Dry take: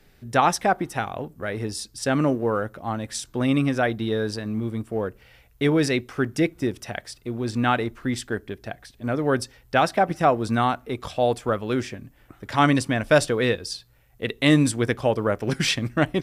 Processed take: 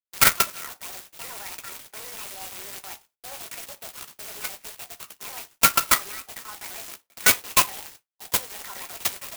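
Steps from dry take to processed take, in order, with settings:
loose part that buzzes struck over −36 dBFS, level −19 dBFS
notch filter 2,500 Hz, Q 8.8
noise gate −47 dBFS, range −30 dB
high-pass filter 1,100 Hz 12 dB per octave
output level in coarse steps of 23 dB
convolution reverb RT60 0.35 s, pre-delay 3 ms, DRR 0 dB
wrong playback speed 45 rpm record played at 78 rpm
converter with an unsteady clock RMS 0.095 ms
level −2 dB

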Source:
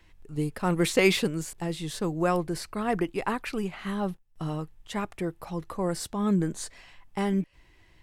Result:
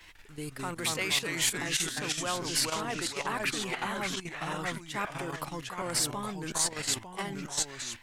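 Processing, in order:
reversed playback
downward compressor 5 to 1, threshold −37 dBFS, peak gain reduction 18.5 dB
reversed playback
delay with pitch and tempo change per echo 151 ms, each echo −2 semitones, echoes 3
output level in coarse steps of 10 dB
tilt shelving filter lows −8 dB, about 640 Hz
level +8 dB

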